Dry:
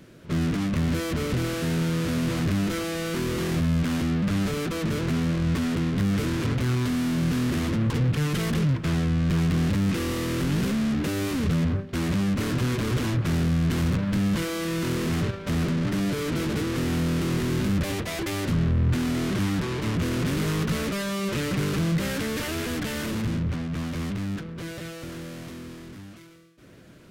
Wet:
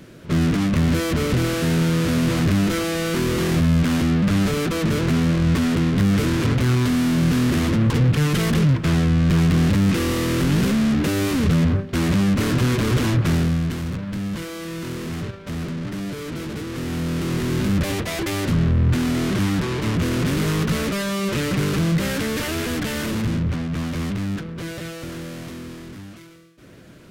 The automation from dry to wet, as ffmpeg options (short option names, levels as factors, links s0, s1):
-af "volume=4.73,afade=t=out:st=13.26:d=0.53:silence=0.354813,afade=t=in:st=16.66:d=1.16:silence=0.421697"